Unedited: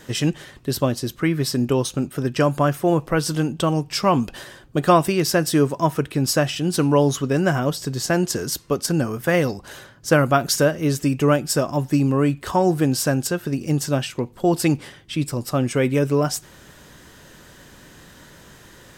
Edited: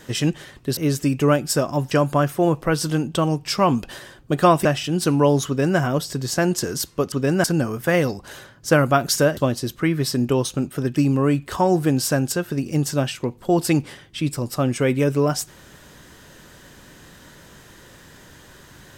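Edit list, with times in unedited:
0.77–2.36 s: swap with 10.77–11.91 s
5.10–6.37 s: delete
7.19–7.51 s: copy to 8.84 s

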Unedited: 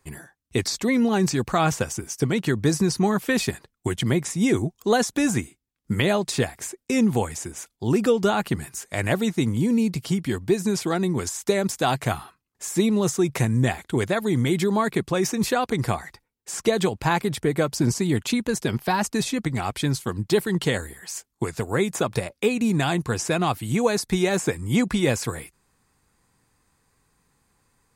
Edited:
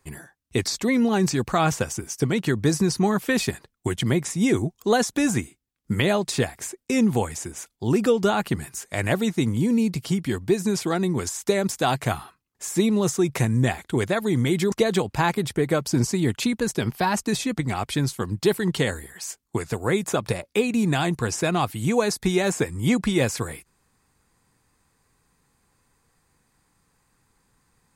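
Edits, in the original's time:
14.72–16.59 s: delete

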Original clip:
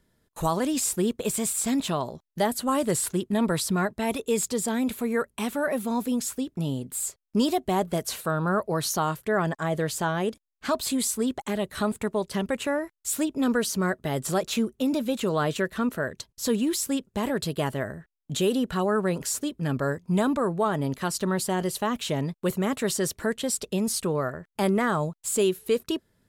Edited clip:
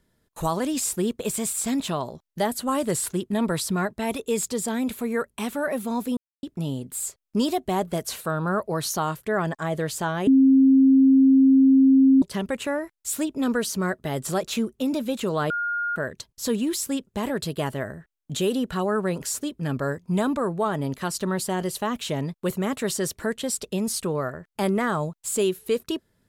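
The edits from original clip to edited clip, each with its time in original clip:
6.17–6.43 s: mute
10.27–12.22 s: bleep 267 Hz -12 dBFS
15.50–15.96 s: bleep 1.42 kHz -23.5 dBFS

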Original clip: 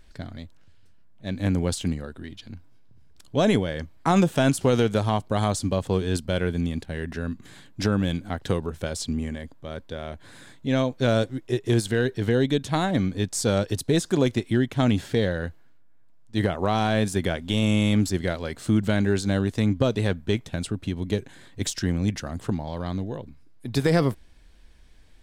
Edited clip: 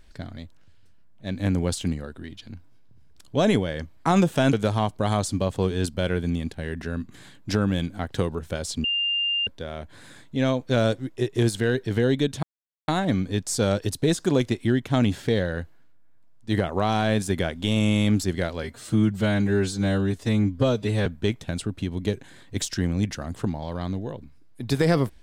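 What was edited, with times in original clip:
4.53–4.84 s: delete
9.15–9.78 s: bleep 2.8 kHz -21.5 dBFS
12.74 s: insert silence 0.45 s
18.49–20.11 s: stretch 1.5×

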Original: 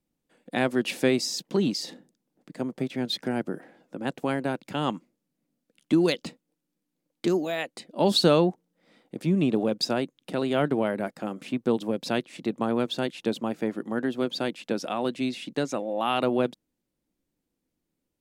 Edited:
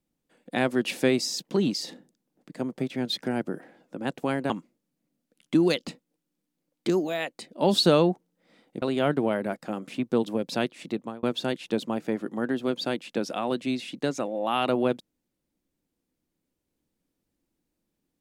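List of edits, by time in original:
4.50–4.88 s: delete
9.20–10.36 s: delete
12.42–12.77 s: fade out

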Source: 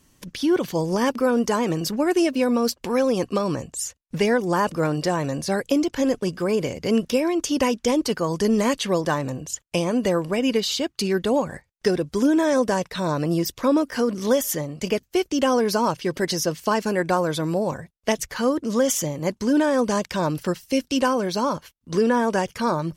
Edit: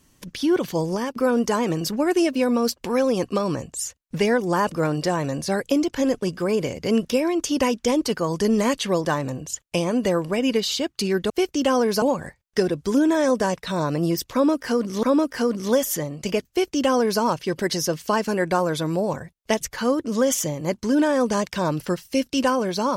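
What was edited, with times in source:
0.85–1.16 s: fade out, to -13 dB
13.61–14.31 s: loop, 2 plays
15.07–15.79 s: copy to 11.30 s

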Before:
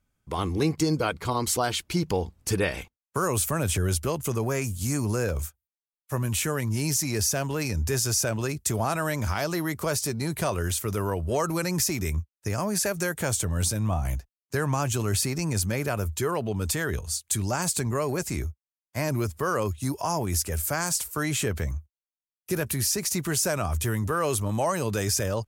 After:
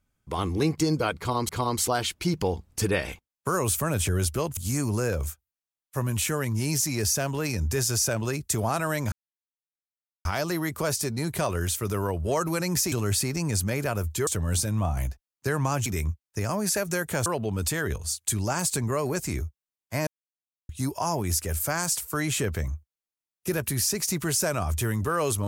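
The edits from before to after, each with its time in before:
1.18–1.49 s: loop, 2 plays
4.26–4.73 s: delete
9.28 s: insert silence 1.13 s
11.95–13.35 s: swap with 14.94–16.29 s
19.10–19.72 s: mute

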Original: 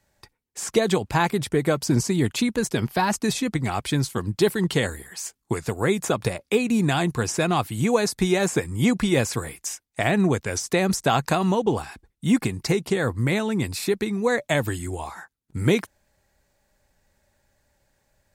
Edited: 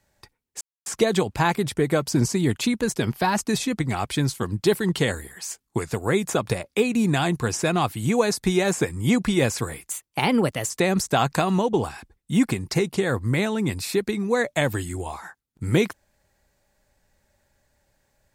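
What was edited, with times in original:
0.61 s: insert silence 0.25 s
9.65–10.63 s: speed 123%

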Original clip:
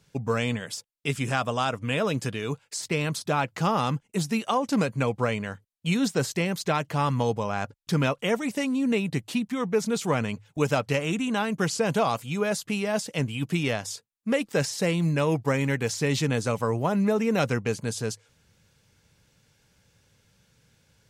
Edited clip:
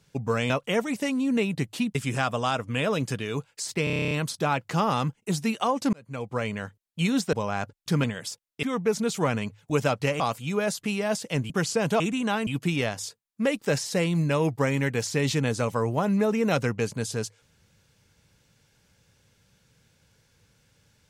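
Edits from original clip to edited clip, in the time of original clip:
0.50–1.09 s: swap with 8.05–9.50 s
2.98 s: stutter 0.03 s, 10 plays
4.80–5.46 s: fade in
6.20–7.34 s: delete
11.07–11.54 s: swap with 12.04–13.34 s

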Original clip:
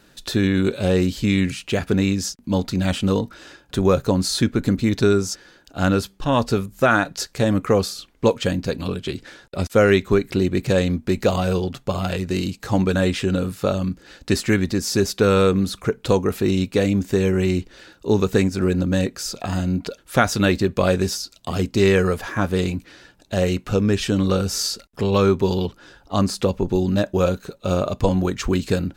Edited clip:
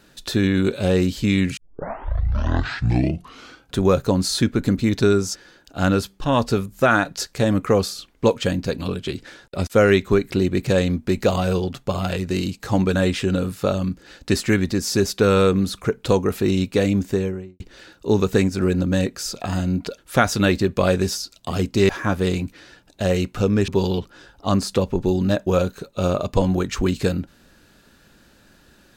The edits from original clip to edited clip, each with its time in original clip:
1.57 s: tape start 2.20 s
16.98–17.60 s: studio fade out
21.89–22.21 s: delete
24.00–25.35 s: delete

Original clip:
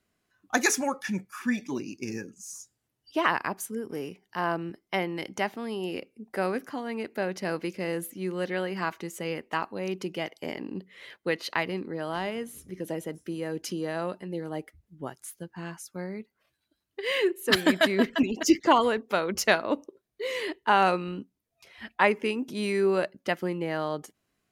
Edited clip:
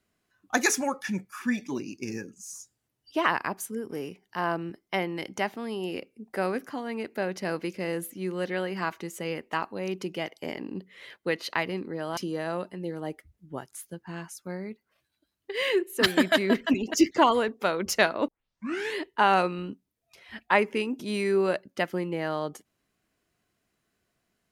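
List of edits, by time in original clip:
12.17–13.66 s: delete
19.77 s: tape start 0.68 s

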